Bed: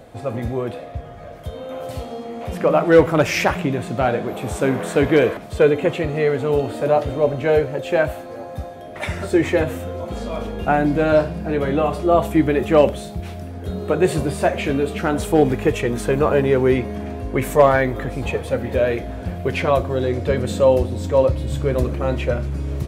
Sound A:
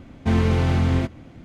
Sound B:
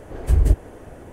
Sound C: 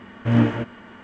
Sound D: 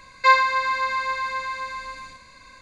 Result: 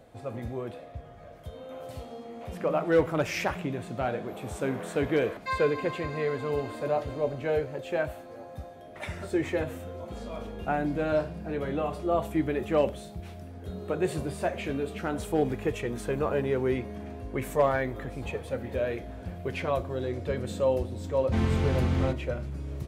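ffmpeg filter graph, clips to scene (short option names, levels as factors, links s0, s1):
-filter_complex "[0:a]volume=0.282[s0];[4:a]atrim=end=2.61,asetpts=PTS-STARTPTS,volume=0.15,afade=t=in:d=0.004:c=hsin,afade=t=out:st=2.606:d=0.004:c=hsin,adelay=5220[s1];[1:a]atrim=end=1.44,asetpts=PTS-STARTPTS,volume=0.447,afade=t=in:d=0.004:c=hsin,afade=t=out:st=1.436:d=0.004:c=hsin,adelay=21060[s2];[s0][s1][s2]amix=inputs=3:normalize=0"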